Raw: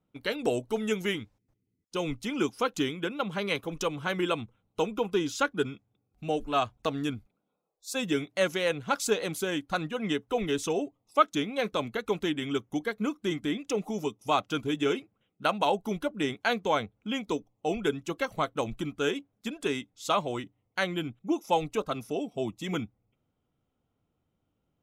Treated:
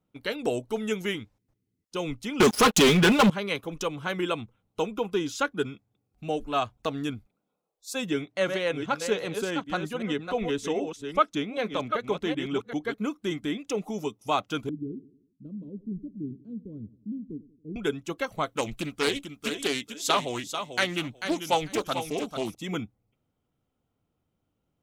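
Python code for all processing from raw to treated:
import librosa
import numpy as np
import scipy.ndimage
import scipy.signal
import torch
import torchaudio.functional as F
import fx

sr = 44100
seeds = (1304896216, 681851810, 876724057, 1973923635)

y = fx.chain(x, sr, fx.comb(ms=4.8, depth=0.75),
    fx.leveller(passes=5), at=(2.4, 3.3))
y = fx.chain(y, sr, fx.reverse_delay(ms=387, wet_db=-7.0),
    fx.high_shelf(hz=7600.0, db=-10.5), at=(8.09, 12.94))
y = fx.chain(y, sr, fx.cheby2_lowpass(hz=730.0, order=4, stop_db=50),
    fx.echo_feedback(ms=92, feedback_pct=49, wet_db=-18.5), at=(14.69, 17.76))
y = fx.chain(y, sr, fx.high_shelf(hz=2600.0, db=11.0),
    fx.echo_feedback(ms=442, feedback_pct=16, wet_db=-8.5),
    fx.doppler_dist(depth_ms=0.35), at=(18.49, 22.55))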